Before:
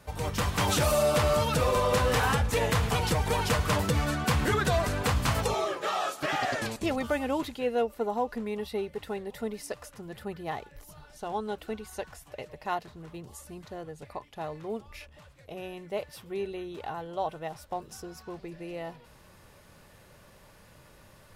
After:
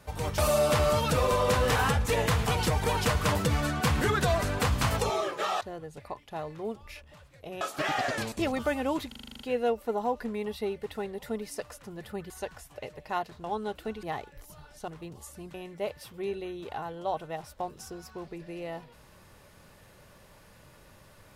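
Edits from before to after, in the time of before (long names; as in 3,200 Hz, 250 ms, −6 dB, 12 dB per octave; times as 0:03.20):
0:00.38–0:00.82: remove
0:07.52: stutter 0.04 s, 9 plays
0:10.42–0:11.27: swap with 0:11.86–0:13.00
0:13.66–0:15.66: move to 0:06.05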